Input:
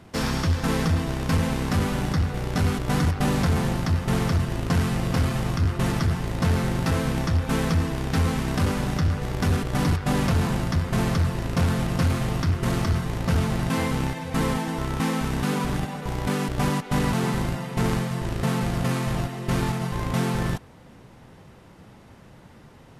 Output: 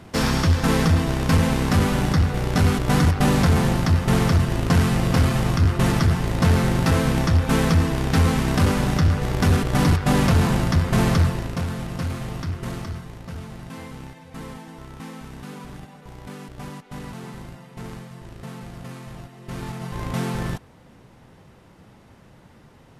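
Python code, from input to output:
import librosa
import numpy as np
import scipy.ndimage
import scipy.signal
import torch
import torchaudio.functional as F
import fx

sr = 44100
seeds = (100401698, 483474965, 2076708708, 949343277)

y = fx.gain(x, sr, db=fx.line((11.23, 4.5), (11.65, -5.0), (12.58, -5.0), (13.31, -12.5), (19.31, -12.5), (20.04, -1.5)))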